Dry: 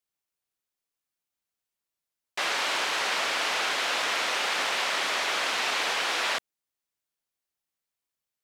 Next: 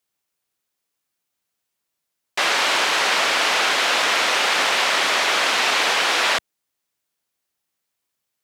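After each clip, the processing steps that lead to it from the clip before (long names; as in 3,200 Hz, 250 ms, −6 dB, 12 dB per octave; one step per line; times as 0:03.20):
high-pass filter 120 Hz 6 dB per octave
low-shelf EQ 190 Hz +4 dB
level +8.5 dB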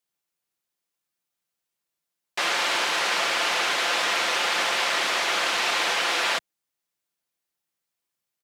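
comb filter 5.8 ms, depth 32%
level −5.5 dB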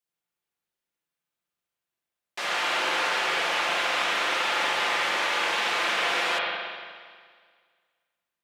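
in parallel at −12 dB: soft clipping −21 dBFS, distortion −15 dB
on the sum: spring reverb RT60 1.8 s, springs 40/59 ms, chirp 55 ms, DRR −5 dB
level −8.5 dB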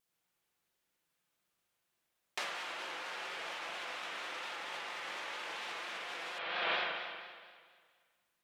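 compressor whose output falls as the input rises −37 dBFS, ratio −1
pitch vibrato 4.3 Hz 66 cents
level −4.5 dB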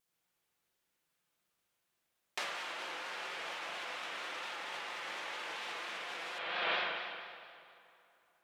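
dense smooth reverb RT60 3.3 s, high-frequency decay 0.7×, DRR 13 dB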